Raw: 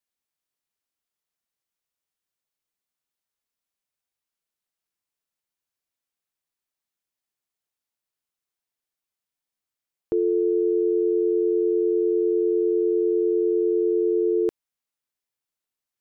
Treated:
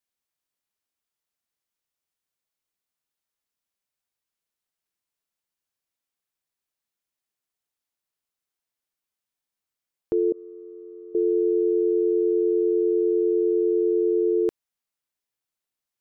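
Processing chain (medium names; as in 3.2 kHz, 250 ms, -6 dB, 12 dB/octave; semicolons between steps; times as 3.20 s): 10.32–11.15 s: expander -8 dBFS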